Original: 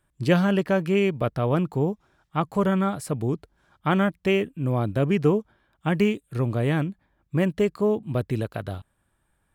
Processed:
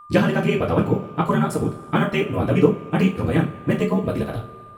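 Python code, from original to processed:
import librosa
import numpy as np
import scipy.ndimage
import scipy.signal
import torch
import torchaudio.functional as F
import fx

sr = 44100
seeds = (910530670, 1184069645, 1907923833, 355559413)

y = fx.rev_double_slope(x, sr, seeds[0], early_s=0.51, late_s=4.3, knee_db=-22, drr_db=-4.0)
y = fx.stretch_grains(y, sr, factor=0.5, grain_ms=26.0)
y = y + 10.0 ** (-41.0 / 20.0) * np.sin(2.0 * np.pi * 1200.0 * np.arange(len(y)) / sr)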